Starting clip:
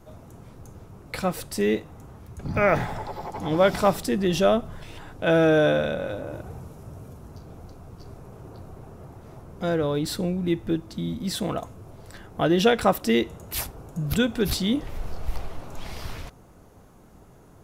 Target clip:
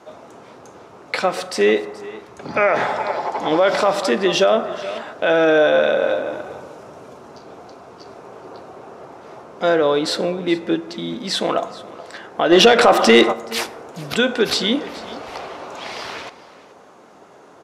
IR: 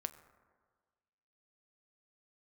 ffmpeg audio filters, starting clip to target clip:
-filter_complex "[0:a]highpass=410,lowpass=5.4k,aecho=1:1:426:0.112,asplit=2[a][b];[1:a]atrim=start_sample=2205[c];[b][c]afir=irnorm=-1:irlink=0,volume=11dB[d];[a][d]amix=inputs=2:normalize=0,alimiter=limit=-6dB:level=0:latency=1:release=67,asplit=3[e][f][g];[e]afade=t=out:st=12.51:d=0.02[h];[f]acontrast=81,afade=t=in:st=12.51:d=0.02,afade=t=out:st=13.31:d=0.02[i];[g]afade=t=in:st=13.31:d=0.02[j];[h][i][j]amix=inputs=3:normalize=0"

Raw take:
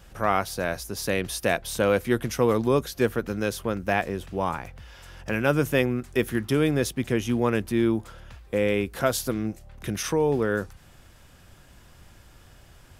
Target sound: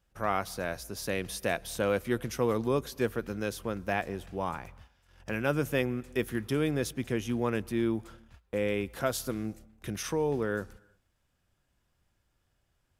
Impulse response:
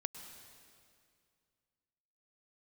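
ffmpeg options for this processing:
-filter_complex "[0:a]agate=range=-17dB:threshold=-42dB:ratio=16:detection=peak,asplit=2[a][b];[1:a]atrim=start_sample=2205,afade=t=out:st=0.41:d=0.01,atrim=end_sample=18522[c];[b][c]afir=irnorm=-1:irlink=0,volume=-14.5dB[d];[a][d]amix=inputs=2:normalize=0,volume=-7.5dB"

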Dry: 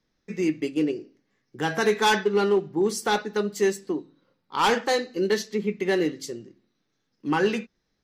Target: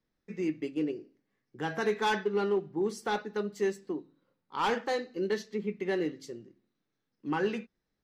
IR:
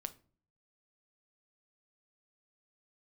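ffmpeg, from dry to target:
-af "highshelf=f=4.6k:g=-10,volume=-7dB"

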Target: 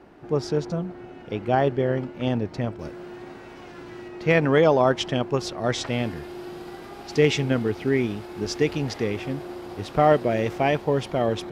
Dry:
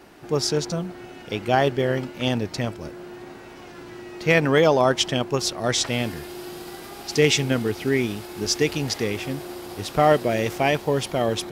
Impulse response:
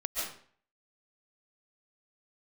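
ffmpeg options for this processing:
-af "asetnsamples=n=441:p=0,asendcmd='2.79 lowpass f 4000;4.08 lowpass f 1900',lowpass=f=1.1k:p=1"

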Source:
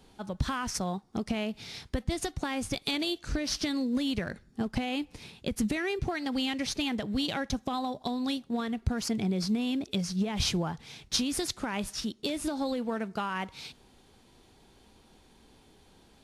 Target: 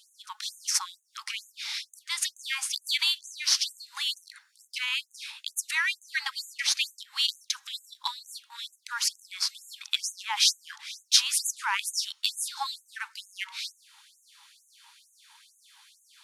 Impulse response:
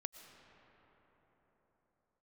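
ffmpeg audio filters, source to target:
-af "acontrast=34,afftfilt=real='re*gte(b*sr/1024,780*pow(6300/780,0.5+0.5*sin(2*PI*2.2*pts/sr)))':imag='im*gte(b*sr/1024,780*pow(6300/780,0.5+0.5*sin(2*PI*2.2*pts/sr)))':win_size=1024:overlap=0.75,volume=4dB"

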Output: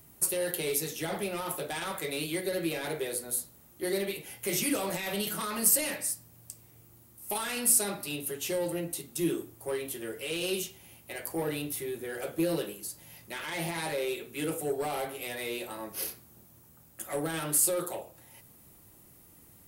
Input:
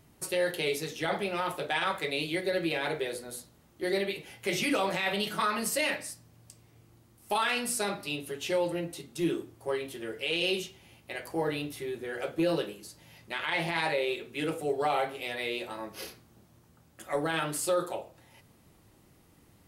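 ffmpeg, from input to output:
-filter_complex "[0:a]acrossover=split=470|5200[a][b][c];[b]asoftclip=type=tanh:threshold=-34.5dB[d];[c]aemphasis=mode=production:type=50fm[e];[a][d][e]amix=inputs=3:normalize=0"

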